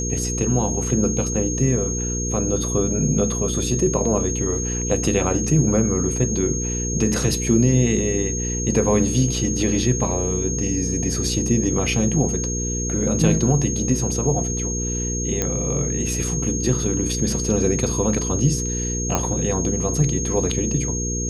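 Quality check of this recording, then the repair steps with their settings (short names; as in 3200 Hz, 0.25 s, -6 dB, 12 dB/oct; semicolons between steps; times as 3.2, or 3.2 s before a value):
hum 60 Hz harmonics 8 -26 dBFS
tone 6500 Hz -26 dBFS
15.42 pop -7 dBFS
19.15 pop -7 dBFS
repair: de-click; notch 6500 Hz, Q 30; de-hum 60 Hz, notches 8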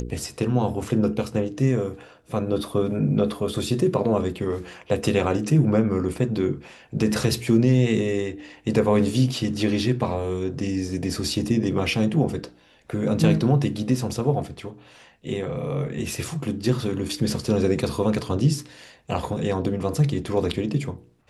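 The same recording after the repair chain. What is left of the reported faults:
none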